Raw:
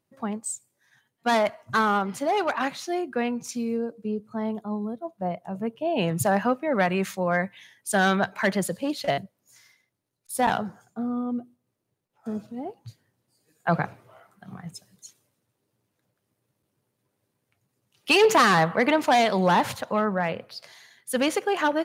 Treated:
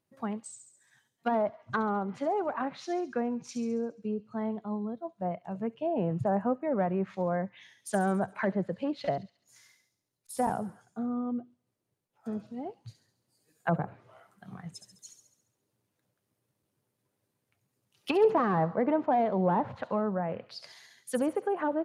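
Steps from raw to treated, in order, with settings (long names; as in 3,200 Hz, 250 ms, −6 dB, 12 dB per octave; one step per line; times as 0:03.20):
treble cut that deepens with the level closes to 830 Hz, closed at −21 dBFS
on a send: delay with a high-pass on its return 69 ms, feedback 55%, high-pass 4,900 Hz, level −5.5 dB
on the sum: level −4 dB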